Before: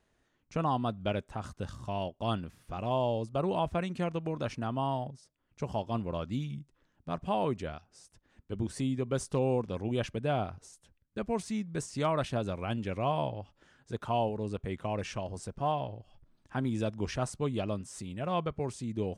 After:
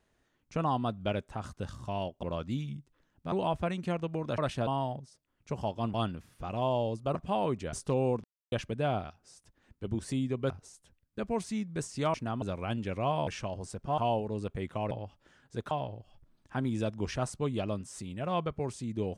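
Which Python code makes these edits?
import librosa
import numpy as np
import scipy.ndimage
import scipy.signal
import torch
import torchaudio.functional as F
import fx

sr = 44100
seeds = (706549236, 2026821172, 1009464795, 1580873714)

y = fx.edit(x, sr, fx.swap(start_s=2.23, length_s=1.21, other_s=6.05, other_length_s=1.09),
    fx.swap(start_s=4.5, length_s=0.28, other_s=12.13, other_length_s=0.29),
    fx.move(start_s=7.72, length_s=1.46, to_s=10.49),
    fx.silence(start_s=9.69, length_s=0.28),
    fx.swap(start_s=13.27, length_s=0.8, other_s=15.0, other_length_s=0.71), tone=tone)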